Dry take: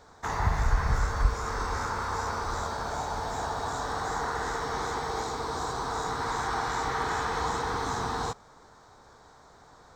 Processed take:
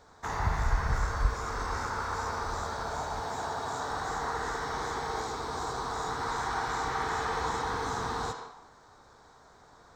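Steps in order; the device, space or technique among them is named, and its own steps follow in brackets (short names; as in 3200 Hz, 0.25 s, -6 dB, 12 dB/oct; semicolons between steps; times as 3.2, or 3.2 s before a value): filtered reverb send (on a send: HPF 570 Hz 6 dB/oct + LPF 5700 Hz + reverb RT60 0.90 s, pre-delay 65 ms, DRR 5 dB); 3.22–3.91 on the sum: HPF 89 Hz; gain -3 dB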